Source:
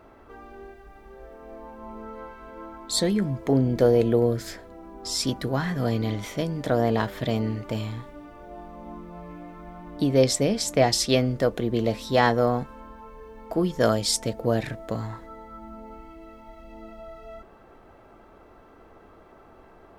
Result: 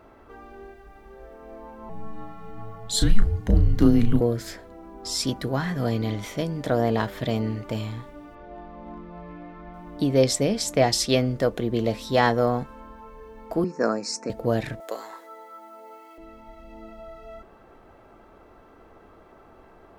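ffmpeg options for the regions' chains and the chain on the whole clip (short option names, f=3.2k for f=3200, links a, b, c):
-filter_complex "[0:a]asettb=1/sr,asplit=3[a][b][c];[a]atrim=end=1.894[d];[b]atrim=start=1.89:end=4.21,asetpts=PTS-STARTPTS,afade=t=in:d=0.004:c=qsin,afade=t=out:st=2.316:d=0.004:c=qsin,equalizer=f=210:t=o:w=0.45:g=14.5,afreqshift=-220,asplit=2[e][f];[f]adelay=34,volume=-8.5dB[g];[e][g]amix=inputs=2:normalize=0,atrim=end_sample=102312[h];[c]atrim=start=4.206[i];[d][h]acrossfade=d=0.004:c1=hsin:c2=qsin[j];[j][i]acrossfade=d=0.004:c1=qsin:c2=hsin,asettb=1/sr,asplit=3[k][l][m];[k]atrim=end=8.354[n];[l]atrim=start=8.35:end=9.74,asetpts=PTS-STARTPTS,afade=t=in:d=0.004:c=qsin,afade=t=out:st=1.386:d=0.004:c=qsin,lowpass=f=4.7k:w=0.5412,lowpass=f=4.7k:w=1.3066,equalizer=f=1.8k:t=o:w=0.31:g=3,asoftclip=type=hard:threshold=-31.5dB[o];[m]atrim=start=9.736[p];[n][o]acrossfade=d=0.004:c1=hsin:c2=qsin[q];[q][p]acrossfade=d=0.004:c1=qsin:c2=hsin,asettb=1/sr,asplit=3[r][s][t];[r]atrim=end=13.644[u];[s]atrim=start=13.64:end=14.3,asetpts=PTS-STARTPTS,afade=t=in:d=0.004:c=qsin,afade=t=out:st=0.656:d=0.004:c=qsin,acompressor=mode=upward:threshold=-32dB:ratio=2.5:attack=3.2:release=140:knee=2.83:detection=peak,asuperstop=centerf=3300:order=8:qfactor=2,highpass=f=200:w=0.5412,highpass=f=200:w=1.3066,equalizer=f=630:t=q:w=4:g=-6,equalizer=f=2.1k:t=q:w=4:g=-7,equalizer=f=4.6k:t=q:w=4:g=-9,lowpass=f=6.4k:w=0.5412,lowpass=f=6.4k:w=1.3066[v];[t]atrim=start=14.296[w];[u][v]acrossfade=d=0.004:c1=hsin:c2=qsin[x];[x][w]acrossfade=d=0.004:c1=qsin:c2=hsin,asettb=1/sr,asplit=3[y][z][aa];[y]atrim=end=14.804[ab];[z]atrim=start=14.8:end=16.18,asetpts=PTS-STARTPTS,afade=t=in:d=0.004:c=qsin,afade=t=out:st=1.376:d=0.004:c=qsin,highpass=f=380:w=0.5412,highpass=f=380:w=1.3066,highshelf=f=6.5k:g=11[ac];[aa]atrim=start=16.176[ad];[ab][ac]acrossfade=d=0.004:c1=hsin:c2=qsin[ae];[ae][ad]acrossfade=d=0.004:c1=qsin:c2=hsin"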